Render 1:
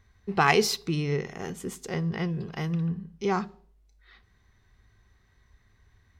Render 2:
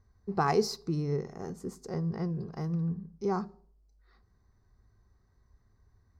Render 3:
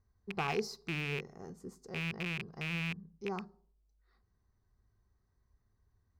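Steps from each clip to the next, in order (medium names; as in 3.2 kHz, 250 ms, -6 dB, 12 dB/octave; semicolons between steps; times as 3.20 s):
FFT filter 410 Hz 0 dB, 1.2 kHz -3 dB, 3.2 kHz -23 dB, 4.6 kHz -3 dB, 8.9 kHz -10 dB; trim -3 dB
rattle on loud lows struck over -33 dBFS, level -18 dBFS; trim -8.5 dB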